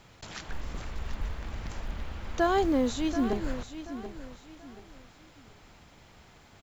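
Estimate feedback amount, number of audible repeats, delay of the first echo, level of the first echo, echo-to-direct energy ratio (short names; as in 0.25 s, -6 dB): 32%, 3, 0.732 s, -11.5 dB, -11.0 dB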